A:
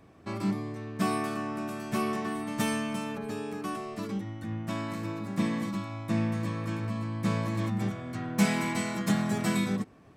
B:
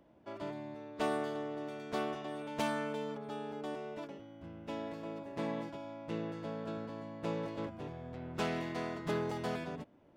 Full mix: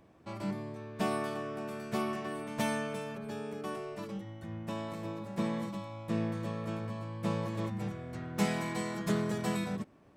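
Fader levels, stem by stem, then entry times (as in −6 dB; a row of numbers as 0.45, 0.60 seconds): −7.0, −1.5 decibels; 0.00, 0.00 seconds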